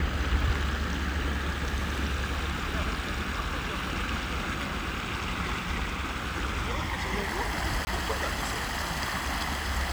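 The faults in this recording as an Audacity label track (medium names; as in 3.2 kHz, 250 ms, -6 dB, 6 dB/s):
7.850000	7.870000	dropout 20 ms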